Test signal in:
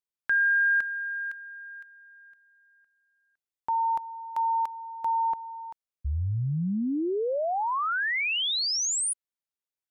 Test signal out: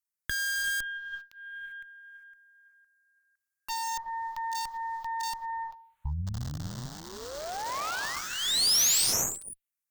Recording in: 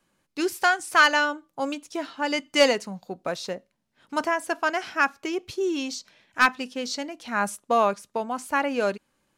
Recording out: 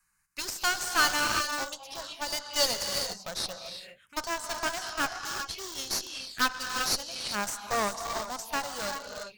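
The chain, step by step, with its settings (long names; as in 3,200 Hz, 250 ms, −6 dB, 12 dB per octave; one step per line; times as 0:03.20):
reverb whose tail is shaped and stops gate 420 ms rising, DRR 4.5 dB
in parallel at −11 dB: wrap-around overflow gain 23 dB
on the sum: phaser swept by the level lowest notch 570 Hz, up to 2,400 Hz, full sweep at −24.5 dBFS
guitar amp tone stack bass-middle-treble 10-0-10
harmonic generator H 8 −16 dB, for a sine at −15.5 dBFS
level +3.5 dB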